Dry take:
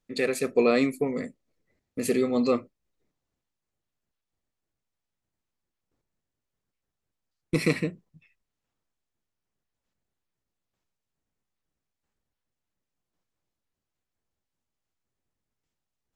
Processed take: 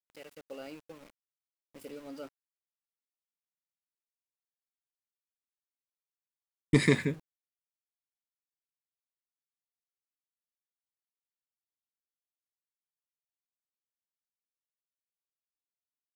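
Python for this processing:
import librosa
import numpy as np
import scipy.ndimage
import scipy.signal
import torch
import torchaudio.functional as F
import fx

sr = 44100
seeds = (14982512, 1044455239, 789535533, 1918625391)

y = fx.doppler_pass(x, sr, speed_mps=40, closest_m=7.1, pass_at_s=6.4)
y = np.where(np.abs(y) >= 10.0 ** (-59.0 / 20.0), y, 0.0)
y = y * librosa.db_to_amplitude(8.5)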